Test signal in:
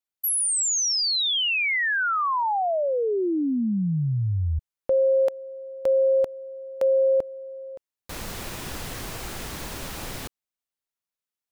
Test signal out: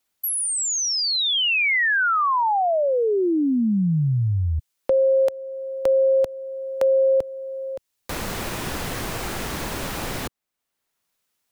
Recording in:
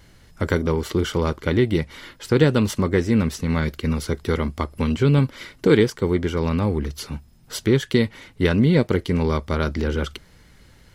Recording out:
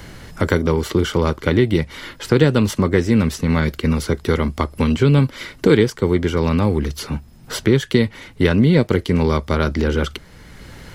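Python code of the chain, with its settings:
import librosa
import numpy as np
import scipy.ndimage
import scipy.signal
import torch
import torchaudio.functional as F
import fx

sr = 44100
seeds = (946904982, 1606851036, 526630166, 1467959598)

y = fx.band_squash(x, sr, depth_pct=40)
y = y * 10.0 ** (3.5 / 20.0)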